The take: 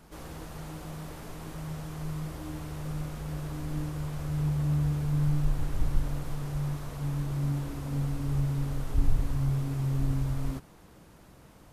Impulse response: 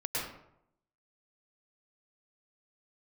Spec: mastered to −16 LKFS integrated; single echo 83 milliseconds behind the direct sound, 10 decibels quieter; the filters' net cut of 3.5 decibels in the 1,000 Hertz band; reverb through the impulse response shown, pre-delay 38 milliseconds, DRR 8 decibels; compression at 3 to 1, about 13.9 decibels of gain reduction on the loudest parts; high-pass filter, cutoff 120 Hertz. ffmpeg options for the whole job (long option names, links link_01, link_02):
-filter_complex "[0:a]highpass=120,equalizer=frequency=1000:width_type=o:gain=-4.5,acompressor=threshold=-46dB:ratio=3,aecho=1:1:83:0.316,asplit=2[link_01][link_02];[1:a]atrim=start_sample=2205,adelay=38[link_03];[link_02][link_03]afir=irnorm=-1:irlink=0,volume=-13.5dB[link_04];[link_01][link_04]amix=inputs=2:normalize=0,volume=29dB"